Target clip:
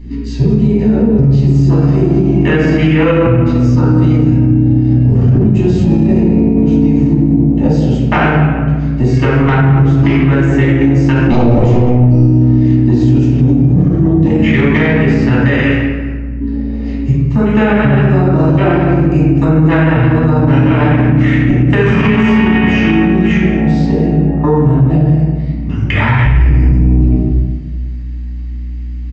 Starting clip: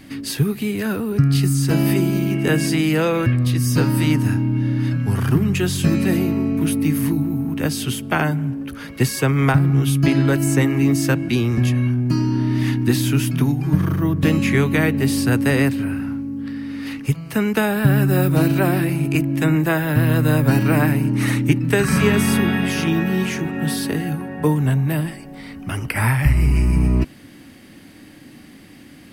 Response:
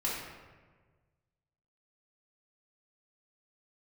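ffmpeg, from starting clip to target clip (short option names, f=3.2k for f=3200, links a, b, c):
-filter_complex "[0:a]asettb=1/sr,asplit=3[a][b][c];[a]atrim=end=15.494[d];[b]atrim=start=15.49:end=16.41,asetpts=PTS-STARTPTS,afade=t=in:d=0.004:c=qsin,afade=t=out:st=0.916:d=0.004:c=qsin,highpass=f=1.2k:p=1[e];[c]atrim=start=16.406[f];[d][e]acrossfade=d=0.004:c1=hsin:c2=qsin[g];[g][f]acrossfade=d=0.004:c1=qsin:c2=hsin,afwtdn=0.0562,asoftclip=type=tanh:threshold=-6dB,aeval=exprs='val(0)+0.0112*(sin(2*PI*60*n/s)+sin(2*PI*2*60*n/s)/2+sin(2*PI*3*60*n/s)/3+sin(2*PI*4*60*n/s)/4+sin(2*PI*5*60*n/s)/5)':c=same,asettb=1/sr,asplit=3[h][i][j];[h]atrim=end=11.274[k];[i]atrim=start=11.27:end=11.99,asetpts=PTS-STARTPTS,afade=t=in:d=0.004:c=qsin,afade=t=out:st=0.716:d=0.004:c=qsin,aeval=exprs='0.355*sin(PI/2*2.51*val(0)/0.355)':c=same[l];[j]atrim=start=11.986[m];[k][l]acrossfade=d=0.004:c1=hsin:c2=qsin[n];[n][m]acrossfade=d=0.004:c1=qsin:c2=hsin,aecho=1:1:198:0.158[o];[1:a]atrim=start_sample=2205[p];[o][p]afir=irnorm=-1:irlink=0,aresample=16000,aresample=44100,alimiter=level_in=7.5dB:limit=-1dB:release=50:level=0:latency=1,volume=-1dB"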